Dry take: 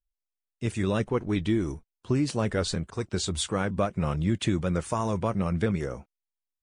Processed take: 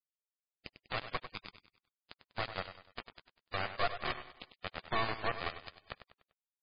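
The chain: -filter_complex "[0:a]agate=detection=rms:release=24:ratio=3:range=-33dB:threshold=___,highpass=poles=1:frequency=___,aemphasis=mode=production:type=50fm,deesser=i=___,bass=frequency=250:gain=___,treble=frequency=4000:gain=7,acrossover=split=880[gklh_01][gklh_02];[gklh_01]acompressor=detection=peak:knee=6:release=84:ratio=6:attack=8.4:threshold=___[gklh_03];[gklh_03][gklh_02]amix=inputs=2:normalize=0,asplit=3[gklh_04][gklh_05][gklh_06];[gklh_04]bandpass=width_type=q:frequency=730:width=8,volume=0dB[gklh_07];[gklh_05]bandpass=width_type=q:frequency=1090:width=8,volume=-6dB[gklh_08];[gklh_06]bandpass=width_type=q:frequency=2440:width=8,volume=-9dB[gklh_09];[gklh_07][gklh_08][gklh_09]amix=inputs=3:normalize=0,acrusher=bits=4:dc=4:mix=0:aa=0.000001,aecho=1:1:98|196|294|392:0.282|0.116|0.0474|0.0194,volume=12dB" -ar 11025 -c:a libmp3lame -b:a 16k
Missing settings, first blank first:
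-40dB, 50, 0.6, -1, -40dB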